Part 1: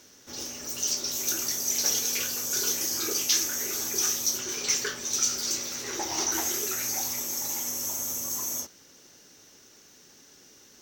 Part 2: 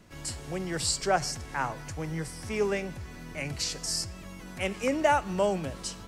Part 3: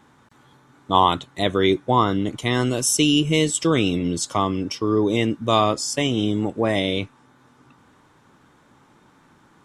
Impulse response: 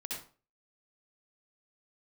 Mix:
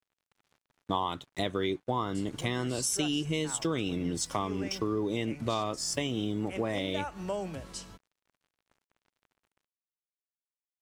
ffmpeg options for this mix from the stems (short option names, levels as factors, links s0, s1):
-filter_complex "[1:a]adelay=1900,volume=0.531[s0];[2:a]aeval=exprs='sgn(val(0))*max(abs(val(0))-0.00422,0)':c=same,volume=0.891[s1];[s0][s1]amix=inputs=2:normalize=0,acompressor=threshold=0.0355:ratio=4"